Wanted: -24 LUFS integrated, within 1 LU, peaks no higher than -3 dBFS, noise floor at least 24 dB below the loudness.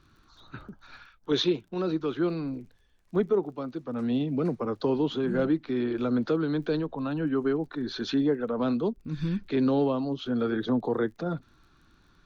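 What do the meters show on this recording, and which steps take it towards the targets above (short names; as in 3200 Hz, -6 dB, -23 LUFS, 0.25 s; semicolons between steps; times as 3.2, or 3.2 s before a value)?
ticks 34/s; loudness -28.5 LUFS; peak -14.5 dBFS; loudness target -24.0 LUFS
-> de-click; gain +4.5 dB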